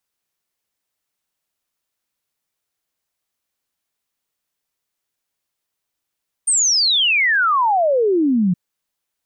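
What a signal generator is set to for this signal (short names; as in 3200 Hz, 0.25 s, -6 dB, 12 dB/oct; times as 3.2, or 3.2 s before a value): log sweep 9000 Hz -> 170 Hz 2.07 s -13 dBFS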